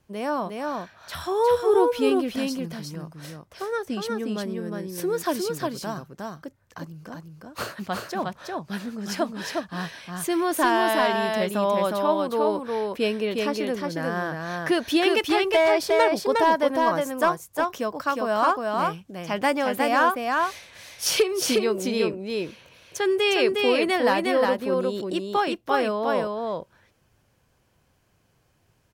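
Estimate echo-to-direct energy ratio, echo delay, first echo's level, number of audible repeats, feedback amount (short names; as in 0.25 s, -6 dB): -3.0 dB, 0.359 s, -3.0 dB, 1, no steady repeat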